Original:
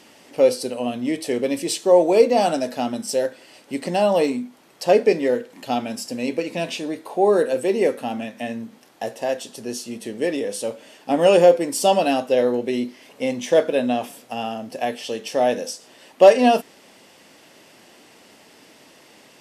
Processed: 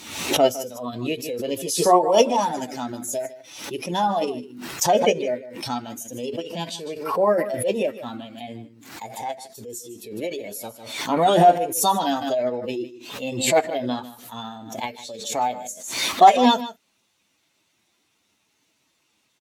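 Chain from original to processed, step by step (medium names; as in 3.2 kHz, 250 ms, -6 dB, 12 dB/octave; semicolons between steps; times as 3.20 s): expander on every frequency bin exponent 1.5; formant shift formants +4 st; on a send: delay 153 ms -15 dB; on the sum: swell ahead of each attack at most 70 dB/s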